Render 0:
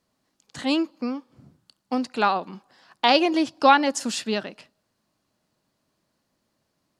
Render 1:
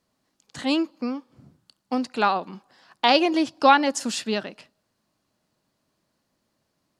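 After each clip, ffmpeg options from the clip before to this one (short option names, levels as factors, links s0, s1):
-af anull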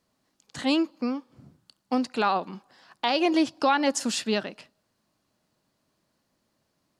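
-af "alimiter=limit=0.251:level=0:latency=1:release=121"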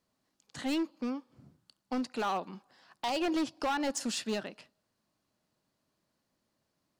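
-af "asoftclip=type=hard:threshold=0.0891,volume=0.501"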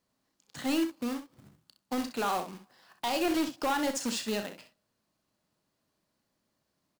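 -af "acrusher=bits=2:mode=log:mix=0:aa=0.000001,aecho=1:1:34|64:0.266|0.335"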